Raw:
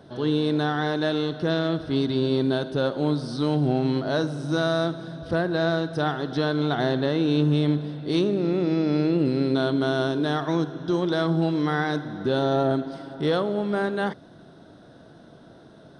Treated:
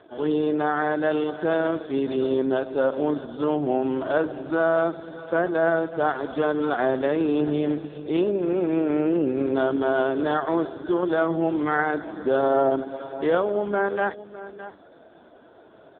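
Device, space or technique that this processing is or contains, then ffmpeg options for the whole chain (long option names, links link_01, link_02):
satellite phone: -af "highpass=360,lowpass=3100,aecho=1:1:611:0.178,volume=4.5dB" -ar 8000 -c:a libopencore_amrnb -b:a 4750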